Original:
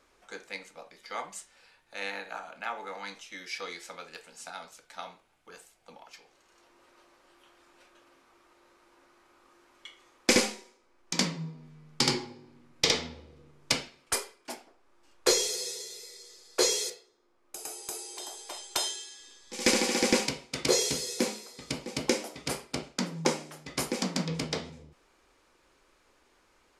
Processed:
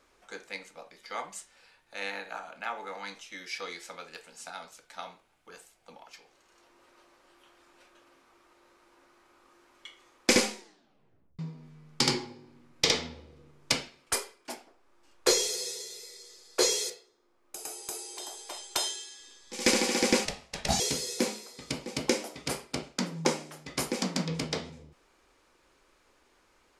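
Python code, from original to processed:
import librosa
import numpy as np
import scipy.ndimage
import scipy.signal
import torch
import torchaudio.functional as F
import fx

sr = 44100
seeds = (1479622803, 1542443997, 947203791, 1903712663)

y = fx.ring_mod(x, sr, carrier_hz=300.0, at=(20.25, 20.8))
y = fx.edit(y, sr, fx.tape_stop(start_s=10.58, length_s=0.81), tone=tone)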